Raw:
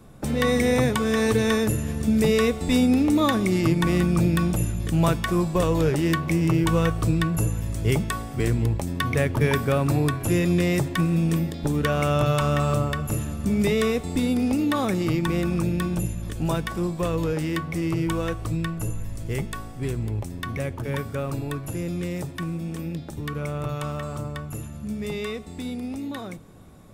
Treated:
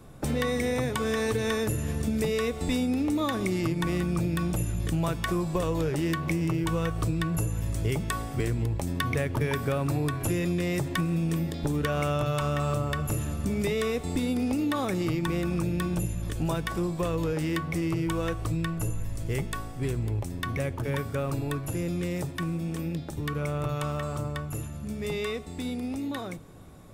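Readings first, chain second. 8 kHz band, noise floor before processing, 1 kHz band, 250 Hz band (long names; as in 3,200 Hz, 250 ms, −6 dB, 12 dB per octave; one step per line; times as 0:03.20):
−3.5 dB, −37 dBFS, −4.5 dB, −5.5 dB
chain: parametric band 210 Hz −5.5 dB 0.25 octaves
downward compressor, threshold −24 dBFS, peak gain reduction 8 dB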